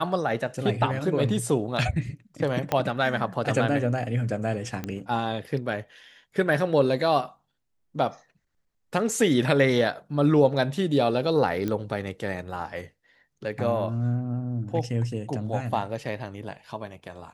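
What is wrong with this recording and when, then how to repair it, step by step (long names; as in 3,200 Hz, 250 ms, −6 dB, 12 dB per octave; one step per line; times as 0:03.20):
0:02.72: click −10 dBFS
0:04.84: click −17 dBFS
0:11.68: click −16 dBFS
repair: click removal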